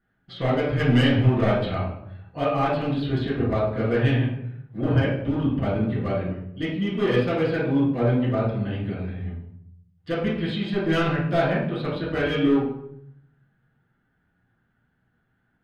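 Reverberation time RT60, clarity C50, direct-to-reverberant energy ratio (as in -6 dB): 0.75 s, 2.5 dB, -10.0 dB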